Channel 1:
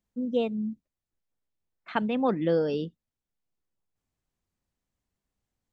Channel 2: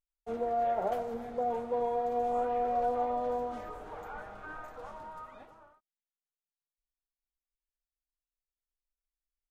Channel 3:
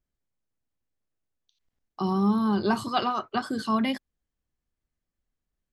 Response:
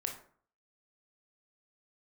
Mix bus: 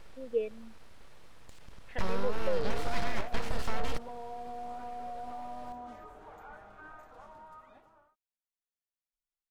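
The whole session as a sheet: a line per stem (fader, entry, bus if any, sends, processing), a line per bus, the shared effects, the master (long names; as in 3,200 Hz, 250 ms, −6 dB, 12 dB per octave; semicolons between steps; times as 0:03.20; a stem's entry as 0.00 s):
+1.0 dB, 0.00 s, bus A, no send, formant filter e; tape wow and flutter 120 cents
−6.0 dB, 2.35 s, no bus, no send, notch filter 490 Hz, Q 14; brickwall limiter −29 dBFS, peak gain reduction 8 dB
−9.0 dB, 0.00 s, bus A, no send, compressor on every frequency bin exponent 0.4; full-wave rectification
bus A: 0.0 dB, low-shelf EQ 95 Hz +12 dB; downward compressor, threshold −21 dBFS, peak gain reduction 6 dB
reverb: not used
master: no processing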